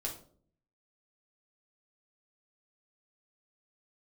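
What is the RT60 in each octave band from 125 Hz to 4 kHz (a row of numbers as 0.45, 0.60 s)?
0.90, 0.75, 0.60, 0.45, 0.30, 0.30 s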